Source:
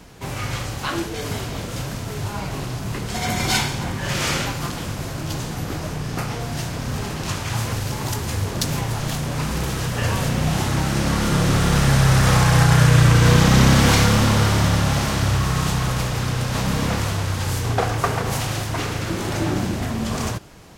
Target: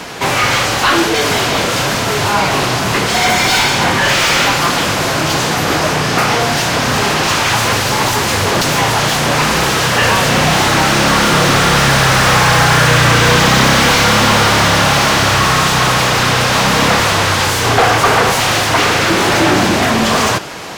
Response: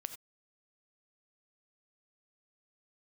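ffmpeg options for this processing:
-filter_complex "[0:a]highshelf=frequency=3900:gain=9,asplit=2[link_01][link_02];[link_02]highpass=frequency=720:poles=1,volume=30dB,asoftclip=type=tanh:threshold=0dB[link_03];[link_01][link_03]amix=inputs=2:normalize=0,lowpass=frequency=2300:poles=1,volume=-6dB,asplit=2[link_04][link_05];[1:a]atrim=start_sample=2205,lowpass=6700[link_06];[link_05][link_06]afir=irnorm=-1:irlink=0,volume=-6.5dB[link_07];[link_04][link_07]amix=inputs=2:normalize=0,volume=-2.5dB"

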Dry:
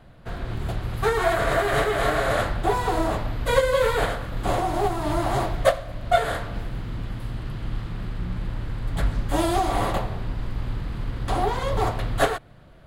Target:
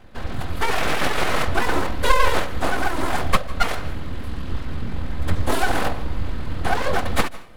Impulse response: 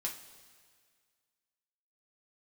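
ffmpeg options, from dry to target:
-filter_complex "[0:a]aecho=1:1:3.9:0.85,atempo=1.7,aeval=exprs='abs(val(0))':channel_layout=same,asplit=2[link_01][link_02];[1:a]atrim=start_sample=2205,asetrate=48510,aresample=44100,adelay=149[link_03];[link_02][link_03]afir=irnorm=-1:irlink=0,volume=-18.5dB[link_04];[link_01][link_04]amix=inputs=2:normalize=0,volume=2.5dB"

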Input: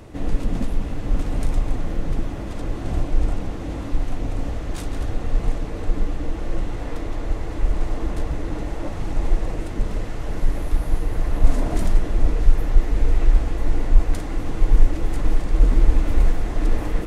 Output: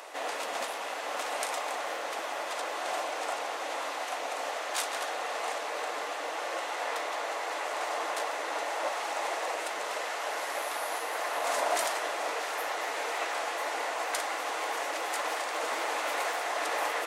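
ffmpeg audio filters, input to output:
ffmpeg -i in.wav -af "highpass=frequency=640:width=0.5412,highpass=frequency=640:width=1.3066,volume=7dB" out.wav

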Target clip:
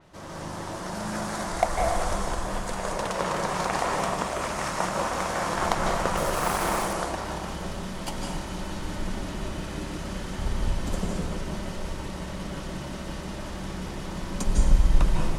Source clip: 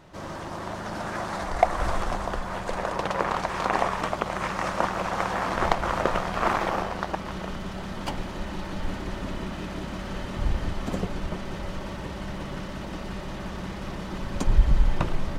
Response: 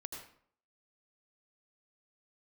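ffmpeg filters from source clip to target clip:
-filter_complex "[0:a]asettb=1/sr,asplit=3[link_01][link_02][link_03];[link_01]atrim=end=6.174[link_04];[link_02]atrim=start=6.17:end=6.93,asetpts=PTS-STARTPTS,afade=type=in:duration=0.004:curve=qsin,afade=type=out:start_time=0.756:duration=0.004:curve=qsin,acrusher=bits=5:mix=0:aa=0.5[link_05];[link_03]atrim=start=6.926[link_06];[link_04][link_05]acrossfade=duration=0.004:curve1=hsin:curve2=qsin[link_07];[link_07][link_06]acrossfade=duration=0.004:curve1=qsin:curve2=hsin,crystalizer=i=1:c=0[link_08];[1:a]atrim=start_sample=2205,asetrate=22491,aresample=44100[link_09];[link_08][link_09]afir=irnorm=-1:irlink=0,adynamicequalizer=threshold=0.00501:dfrequency=4900:dqfactor=0.7:tfrequency=4900:tqfactor=0.7:attack=5:release=100:ratio=0.375:range=3.5:mode=boostabove:tftype=highshelf,volume=-3dB"

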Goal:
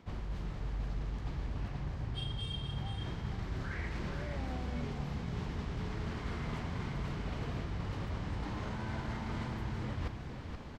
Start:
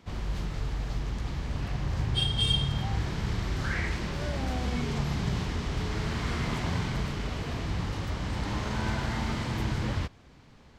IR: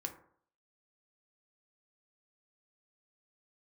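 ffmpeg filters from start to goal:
-af "highshelf=frequency=3200:gain=-9,areverse,acompressor=threshold=-43dB:ratio=16,areverse,aecho=1:1:476:0.447,volume=8dB"

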